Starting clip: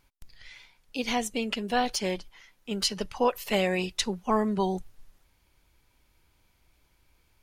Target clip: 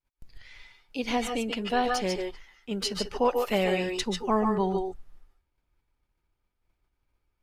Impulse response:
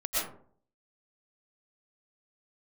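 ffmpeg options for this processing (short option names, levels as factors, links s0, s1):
-filter_complex "[0:a]agate=range=0.0224:threshold=0.00178:ratio=3:detection=peak,asetnsamples=n=441:p=0,asendcmd='4.39 highshelf g -12',highshelf=f=2900:g=-6.5[s0];[1:a]atrim=start_sample=2205,atrim=end_sample=4410,asetrate=29106,aresample=44100[s1];[s0][s1]afir=irnorm=-1:irlink=0"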